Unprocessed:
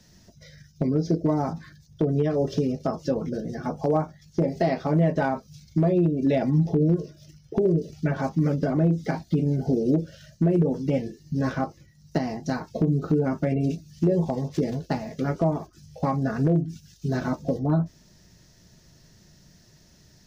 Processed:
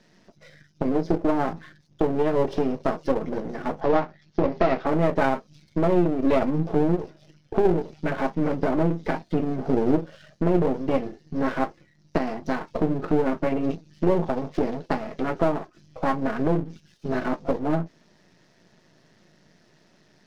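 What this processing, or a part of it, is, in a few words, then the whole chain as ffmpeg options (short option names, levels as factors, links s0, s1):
crystal radio: -filter_complex "[0:a]highpass=240,lowpass=2900,aeval=exprs='if(lt(val(0),0),0.251*val(0),val(0))':c=same,asplit=3[s0][s1][s2];[s0]afade=t=out:st=3.8:d=0.02[s3];[s1]lowpass=f=5700:w=0.5412,lowpass=f=5700:w=1.3066,afade=t=in:st=3.8:d=0.02,afade=t=out:st=4.85:d=0.02[s4];[s2]afade=t=in:st=4.85:d=0.02[s5];[s3][s4][s5]amix=inputs=3:normalize=0,volume=2.11"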